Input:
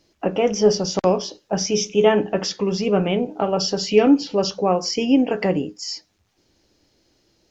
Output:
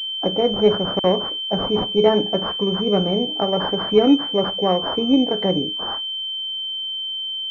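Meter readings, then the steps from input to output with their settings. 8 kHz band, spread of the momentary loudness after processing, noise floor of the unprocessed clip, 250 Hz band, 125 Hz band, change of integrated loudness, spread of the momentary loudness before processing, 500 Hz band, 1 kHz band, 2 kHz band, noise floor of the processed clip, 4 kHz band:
n/a, 7 LU, -66 dBFS, 0.0 dB, 0.0 dB, +0.5 dB, 8 LU, 0.0 dB, +0.5 dB, -4.5 dB, -27 dBFS, +9.5 dB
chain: pulse-width modulation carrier 3100 Hz

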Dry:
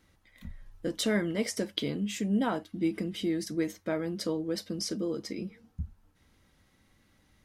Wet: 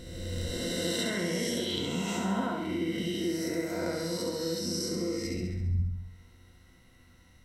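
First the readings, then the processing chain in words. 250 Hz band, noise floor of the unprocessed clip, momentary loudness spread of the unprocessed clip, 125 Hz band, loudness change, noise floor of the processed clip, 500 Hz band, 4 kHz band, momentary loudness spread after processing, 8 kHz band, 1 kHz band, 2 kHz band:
-1.0 dB, -68 dBFS, 14 LU, +5.0 dB, +0.5 dB, -59 dBFS, +0.5 dB, +3.5 dB, 4 LU, +3.5 dB, +2.0 dB, +2.0 dB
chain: spectral swells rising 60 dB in 1.99 s; ripple EQ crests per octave 2, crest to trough 10 dB; compressor 2.5:1, threshold -32 dBFS, peak gain reduction 8.5 dB; low shelf 130 Hz +4 dB; flutter echo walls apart 11.6 m, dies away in 0.91 s; gain -1.5 dB

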